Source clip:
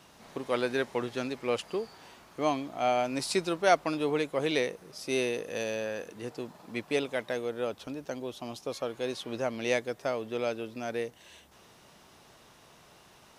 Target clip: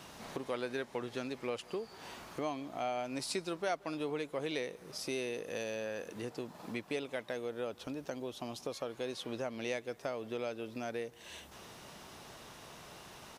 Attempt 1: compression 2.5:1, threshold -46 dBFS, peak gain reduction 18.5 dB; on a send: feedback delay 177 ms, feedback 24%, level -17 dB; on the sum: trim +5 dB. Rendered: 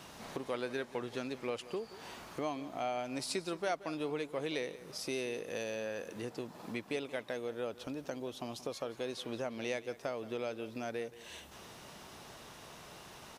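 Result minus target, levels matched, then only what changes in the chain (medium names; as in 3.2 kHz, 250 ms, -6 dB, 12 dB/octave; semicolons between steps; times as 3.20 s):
echo-to-direct +8.5 dB
change: feedback delay 177 ms, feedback 24%, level -25.5 dB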